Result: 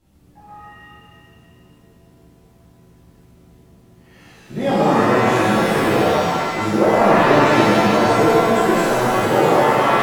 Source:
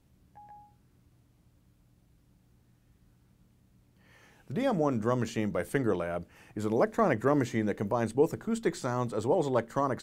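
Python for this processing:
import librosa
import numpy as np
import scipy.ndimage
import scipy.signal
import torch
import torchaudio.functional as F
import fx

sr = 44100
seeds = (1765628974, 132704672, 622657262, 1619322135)

y = fx.rev_shimmer(x, sr, seeds[0], rt60_s=1.9, semitones=7, shimmer_db=-2, drr_db=-10.0)
y = y * librosa.db_to_amplitude(1.0)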